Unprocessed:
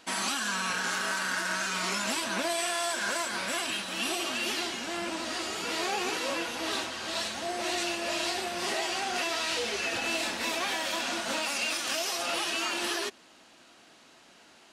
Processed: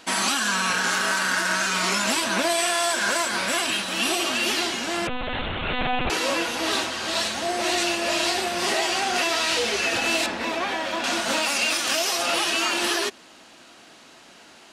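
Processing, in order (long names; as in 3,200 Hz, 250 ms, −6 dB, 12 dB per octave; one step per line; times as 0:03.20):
0:05.07–0:06.10: one-pitch LPC vocoder at 8 kHz 250 Hz
0:10.26–0:11.04: low-pass filter 1,700 Hz 6 dB per octave
level +7.5 dB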